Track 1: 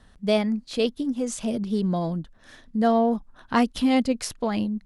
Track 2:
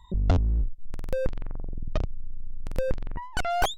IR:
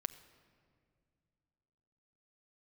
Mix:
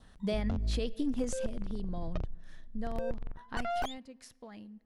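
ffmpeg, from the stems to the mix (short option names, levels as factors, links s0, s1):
-filter_complex "[0:a]adynamicequalizer=threshold=0.00282:dfrequency=1800:dqfactor=4.9:tfrequency=1800:tqfactor=4.9:attack=5:release=100:ratio=0.375:range=3.5:mode=boostabove:tftype=bell,acompressor=threshold=0.0708:ratio=6,volume=0.501,afade=t=out:st=1.23:d=0.26:silence=0.316228,afade=t=out:st=3.55:d=0.48:silence=0.398107,asplit=3[s0][s1][s2];[s1]volume=0.531[s3];[1:a]highshelf=f=4400:g=-7.5,adelay=200,volume=0.501[s4];[s2]apad=whole_len=175466[s5];[s4][s5]sidechaingate=range=0.316:threshold=0.001:ratio=16:detection=peak[s6];[2:a]atrim=start_sample=2205[s7];[s3][s7]afir=irnorm=-1:irlink=0[s8];[s0][s6][s8]amix=inputs=3:normalize=0,alimiter=limit=0.0708:level=0:latency=1:release=132"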